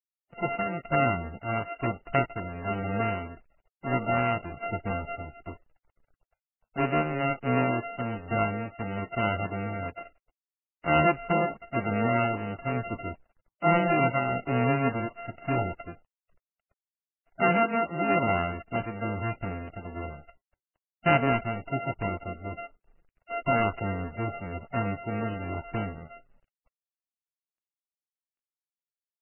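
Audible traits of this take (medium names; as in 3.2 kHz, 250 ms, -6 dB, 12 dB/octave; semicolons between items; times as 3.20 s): a buzz of ramps at a fixed pitch in blocks of 64 samples; tremolo triangle 1.1 Hz, depth 40%; a quantiser's noise floor 12-bit, dither none; MP3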